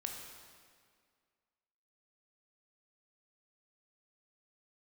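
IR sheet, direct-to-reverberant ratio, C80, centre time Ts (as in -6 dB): 1.5 dB, 4.5 dB, 64 ms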